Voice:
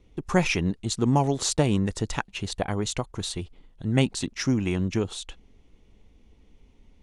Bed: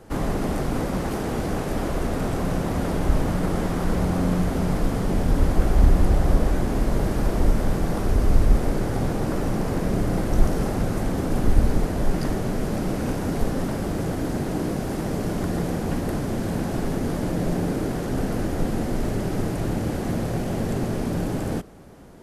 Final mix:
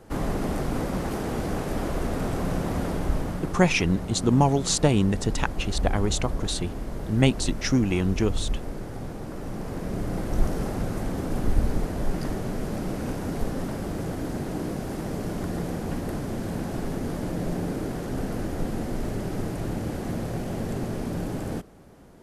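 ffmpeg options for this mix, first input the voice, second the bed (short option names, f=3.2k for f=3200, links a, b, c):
-filter_complex "[0:a]adelay=3250,volume=2dB[a];[1:a]volume=4dB,afade=t=out:st=2.76:d=0.9:silence=0.375837,afade=t=in:st=9.32:d=1.13:silence=0.473151[b];[a][b]amix=inputs=2:normalize=0"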